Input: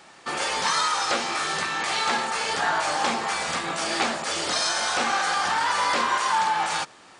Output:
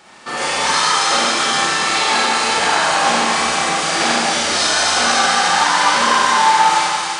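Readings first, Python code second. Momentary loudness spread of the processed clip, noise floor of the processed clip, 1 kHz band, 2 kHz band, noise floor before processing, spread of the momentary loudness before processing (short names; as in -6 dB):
4 LU, -24 dBFS, +9.5 dB, +9.5 dB, -50 dBFS, 4 LU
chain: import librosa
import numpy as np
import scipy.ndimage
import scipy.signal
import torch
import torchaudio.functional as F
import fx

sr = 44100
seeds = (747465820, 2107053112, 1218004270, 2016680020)

y = fx.echo_wet_highpass(x, sr, ms=272, feedback_pct=69, hz=2600.0, wet_db=-5.5)
y = fx.rev_schroeder(y, sr, rt60_s=2.2, comb_ms=30, drr_db=-5.5)
y = y * 10.0 ** (2.5 / 20.0)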